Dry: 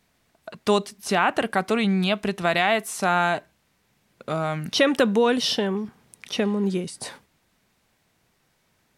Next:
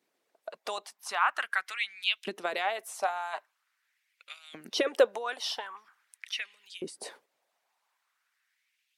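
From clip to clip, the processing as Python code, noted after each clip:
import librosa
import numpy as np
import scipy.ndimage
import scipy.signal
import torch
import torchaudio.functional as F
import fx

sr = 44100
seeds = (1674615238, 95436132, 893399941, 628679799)

y = fx.filter_lfo_highpass(x, sr, shape='saw_up', hz=0.44, low_hz=320.0, high_hz=3300.0, q=3.0)
y = fx.hpss(y, sr, part='harmonic', gain_db=-13)
y = y * 10.0 ** (-7.5 / 20.0)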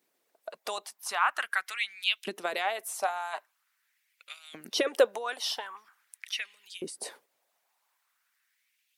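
y = fx.high_shelf(x, sr, hz=9400.0, db=11.5)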